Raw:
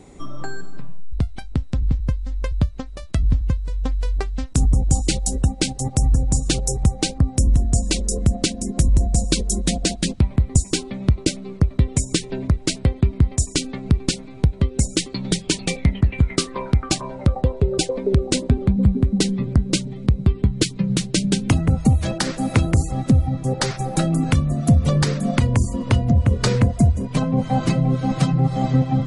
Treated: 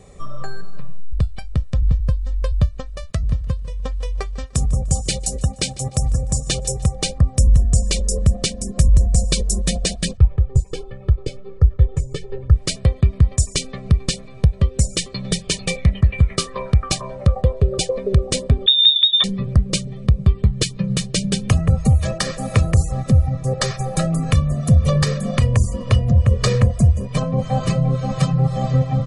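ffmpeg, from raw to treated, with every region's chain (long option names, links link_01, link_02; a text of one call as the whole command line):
ffmpeg -i in.wav -filter_complex "[0:a]asettb=1/sr,asplit=3[link_01][link_02][link_03];[link_01]atrim=end=3.104[link_04];[link_02]atrim=start=3.1:end=6.95,asetpts=PTS-STARTPTS,afade=type=in:duration=0.004:curve=qsin,afade=type=out:start_time=3.846:duration=0.004:curve=qsin,highpass=frequency=98:poles=1,aecho=1:1:149|298|447:0.1|0.035|0.0123,atrim=end_sample=169785[link_05];[link_03]atrim=start=6.946[link_06];[link_04][link_05]acrossfade=duration=0.004:curve1=hsin:curve2=qsin[link_07];[link_07][link_06]acrossfade=duration=0.004:curve1=qsin:curve2=hsin,asettb=1/sr,asplit=3[link_08][link_09][link_10];[link_08]atrim=end=10.174[link_11];[link_09]atrim=start=10.17:end=12.56,asetpts=PTS-STARTPTS,afade=type=in:duration=0.004:curve=qsin,afade=type=out:start_time=2.386:duration=0.004:curve=qsin,lowpass=frequency=1000:poles=1,aecho=1:1:2.3:0.98,atrim=end_sample=105399,flanger=delay=0.6:depth=7:regen=56:speed=1.3:shape=sinusoidal[link_12];[link_10]atrim=start=12.556[link_13];[link_11][link_12]acrossfade=duration=0.004:curve1=hsin:curve2=qsin[link_14];[link_14][link_13]acrossfade=duration=0.004:curve1=qsin:curve2=hsin,asettb=1/sr,asplit=3[link_15][link_16][link_17];[link_15]atrim=end=18.664[link_18];[link_16]atrim=start=18.66:end=19.24,asetpts=PTS-STARTPTS,afade=type=in:duration=0.004:curve=qsin,afade=type=out:start_time=0.576:duration=0.004:curve=qsin,lowpass=frequency=3200:width_type=q:width=0.5098,lowpass=frequency=3200:width_type=q:width=0.6013,lowpass=frequency=3200:width_type=q:width=0.9,lowpass=frequency=3200:width_type=q:width=2.563,afreqshift=-3800,highpass=frequency=200:poles=1[link_19];[link_17]atrim=start=19.236[link_20];[link_18][link_19]acrossfade=duration=0.004:curve1=hsin:curve2=qsin[link_21];[link_21][link_20]acrossfade=duration=0.004:curve1=qsin:curve2=hsin,bandreject=frequency=690:width=12,aecho=1:1:1.7:0.78,volume=-1dB" out.wav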